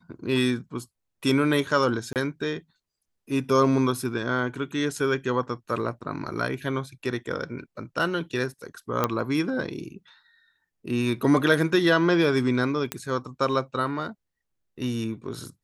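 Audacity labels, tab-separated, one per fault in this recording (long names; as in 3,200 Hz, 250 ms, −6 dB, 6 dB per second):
2.130000	2.160000	drop-out 28 ms
9.040000	9.040000	click −8 dBFS
12.920000	12.920000	click −10 dBFS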